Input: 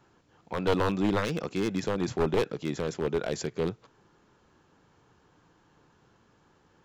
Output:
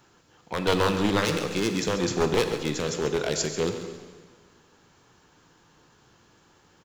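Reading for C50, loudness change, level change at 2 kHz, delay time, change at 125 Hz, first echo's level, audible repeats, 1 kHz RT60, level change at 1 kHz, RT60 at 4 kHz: 7.0 dB, +3.5 dB, +6.0 dB, 0.138 s, +2.5 dB, -12.0 dB, 3, 1.6 s, +4.0 dB, 1.4 s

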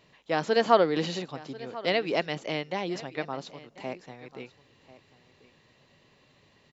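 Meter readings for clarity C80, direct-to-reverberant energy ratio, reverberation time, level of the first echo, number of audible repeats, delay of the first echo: none, none, none, -18.5 dB, 1, 1.041 s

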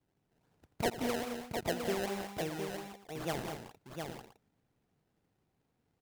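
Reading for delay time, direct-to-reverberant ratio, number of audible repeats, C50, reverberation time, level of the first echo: 85 ms, none, 5, none, none, -15.0 dB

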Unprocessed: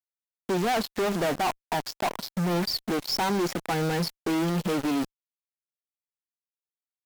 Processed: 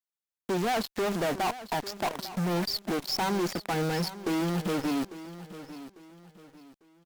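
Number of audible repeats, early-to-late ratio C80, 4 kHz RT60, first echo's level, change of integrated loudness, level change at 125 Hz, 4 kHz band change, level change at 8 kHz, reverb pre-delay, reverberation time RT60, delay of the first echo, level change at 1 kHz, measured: 3, none, none, -14.5 dB, -2.5 dB, -2.5 dB, -2.5 dB, -2.5 dB, none, none, 0.848 s, -2.5 dB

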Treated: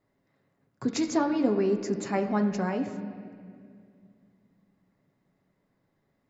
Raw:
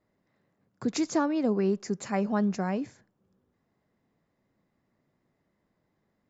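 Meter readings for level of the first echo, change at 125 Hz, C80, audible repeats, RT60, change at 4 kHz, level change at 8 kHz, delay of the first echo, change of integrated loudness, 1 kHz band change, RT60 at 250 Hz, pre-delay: none, -0.5 dB, 10.0 dB, none, 2.2 s, +1.0 dB, n/a, none, +1.0 dB, +1.5 dB, 3.2 s, 7 ms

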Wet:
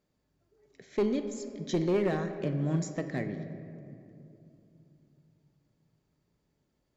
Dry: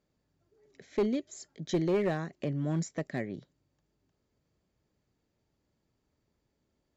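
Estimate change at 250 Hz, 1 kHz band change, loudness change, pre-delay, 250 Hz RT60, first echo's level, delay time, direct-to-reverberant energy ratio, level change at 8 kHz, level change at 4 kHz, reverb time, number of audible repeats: +1.5 dB, +1.0 dB, +0.5 dB, 4 ms, 3.9 s, none, none, 7.0 dB, n/a, +0.5 dB, 2.7 s, none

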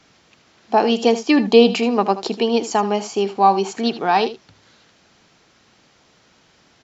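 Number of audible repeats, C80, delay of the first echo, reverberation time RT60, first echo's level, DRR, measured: 1, none, 78 ms, none, -14.0 dB, none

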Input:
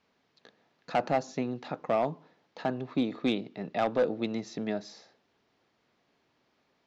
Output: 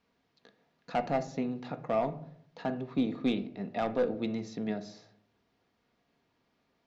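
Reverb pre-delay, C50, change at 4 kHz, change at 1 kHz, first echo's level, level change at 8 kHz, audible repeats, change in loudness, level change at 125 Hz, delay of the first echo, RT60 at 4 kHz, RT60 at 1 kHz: 4 ms, 15.0 dB, -4.0 dB, -3.0 dB, none, n/a, none, -1.5 dB, 0.0 dB, none, 0.35 s, 0.55 s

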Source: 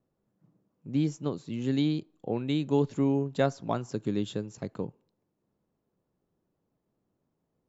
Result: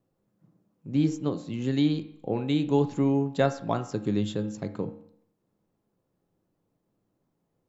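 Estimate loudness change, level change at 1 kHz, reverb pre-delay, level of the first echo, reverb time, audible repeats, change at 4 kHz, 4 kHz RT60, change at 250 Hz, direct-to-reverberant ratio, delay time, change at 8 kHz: +2.5 dB, +3.5 dB, 4 ms, none, 0.65 s, none, +2.0 dB, 0.60 s, +3.0 dB, 8.0 dB, none, n/a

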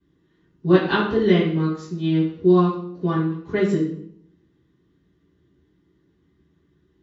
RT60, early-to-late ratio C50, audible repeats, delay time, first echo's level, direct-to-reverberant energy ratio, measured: 0.65 s, 5.0 dB, none, none, none, -17.5 dB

